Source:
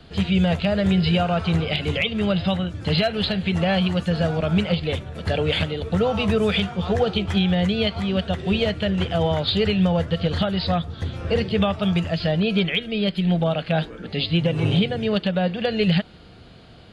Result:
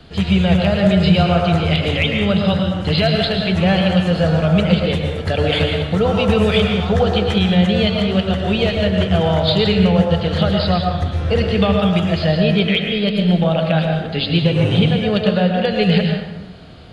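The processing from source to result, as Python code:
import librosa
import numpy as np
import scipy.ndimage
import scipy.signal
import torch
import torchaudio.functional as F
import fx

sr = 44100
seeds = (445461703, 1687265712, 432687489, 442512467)

y = fx.rev_plate(x, sr, seeds[0], rt60_s=1.1, hf_ratio=0.6, predelay_ms=95, drr_db=2.0)
y = y * librosa.db_to_amplitude(3.5)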